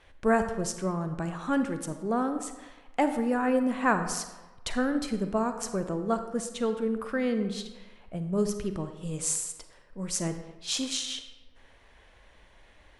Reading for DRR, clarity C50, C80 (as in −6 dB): 8.0 dB, 9.0 dB, 10.5 dB